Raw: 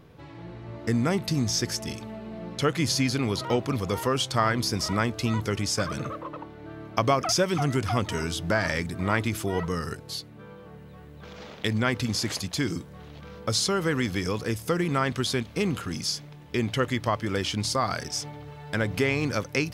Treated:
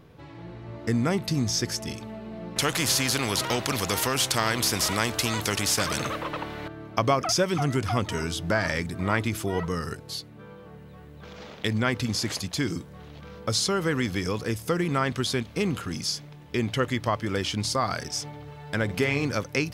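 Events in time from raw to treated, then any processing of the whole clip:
2.56–6.68 spectral compressor 2:1
18.84–19.26 doubler 50 ms -10 dB

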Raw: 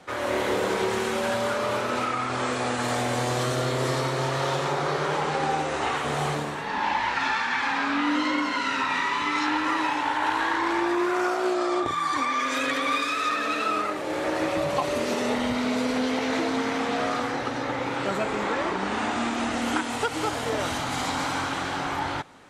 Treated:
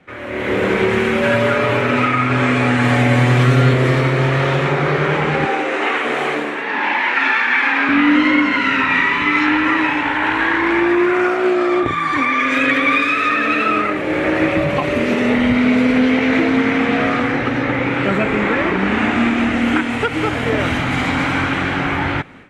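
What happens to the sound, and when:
1.21–3.74 comb 7.2 ms
5.45–7.89 HPF 280 Hz 24 dB/oct
whole clip: high shelf 2000 Hz -11.5 dB; AGC gain up to 12 dB; EQ curve 220 Hz 0 dB, 910 Hz -9 dB, 2300 Hz +7 dB, 4600 Hz -7 dB; gain +3 dB

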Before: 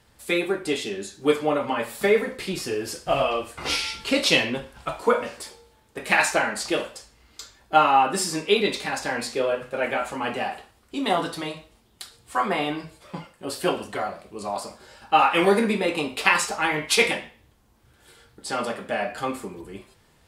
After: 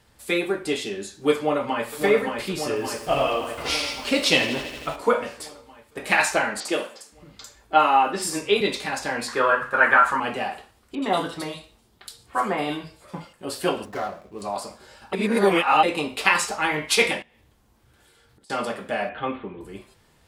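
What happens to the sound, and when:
1.35–1.91 echo throw 0.57 s, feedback 70%, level -4.5 dB
2.68–4.96 lo-fi delay 82 ms, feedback 80%, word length 7-bit, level -13 dB
6.6–8.61 three bands offset in time mids, highs, lows 50/520 ms, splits 160/5300 Hz
9.28–10.2 band shelf 1300 Hz +15.5 dB 1.2 oct
10.95–13.33 bands offset in time lows, highs 70 ms, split 2700 Hz
13.85–14.42 median filter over 15 samples
15.13–15.83 reverse
17.22–18.5 compressor 16:1, threshold -53 dBFS
19.09–19.61 steep low-pass 3600 Hz 72 dB/oct

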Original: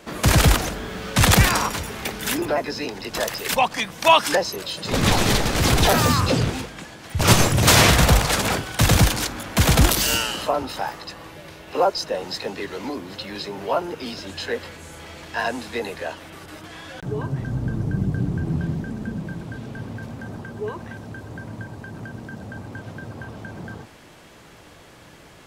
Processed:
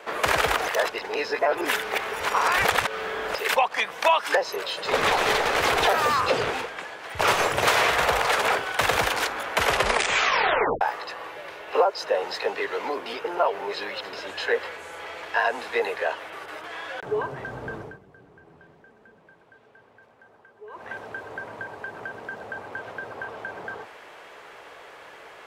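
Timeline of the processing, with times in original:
0.68–3.35 reverse
9.53 tape stop 1.28 s
13.06–14.13 reverse
17.75–20.93 dip -18.5 dB, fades 0.24 s
whole clip: three-band isolator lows -23 dB, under 520 Hz, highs -13 dB, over 2900 Hz; compressor 4:1, threshold -25 dBFS; bell 430 Hz +7 dB 0.41 oct; gain +6 dB

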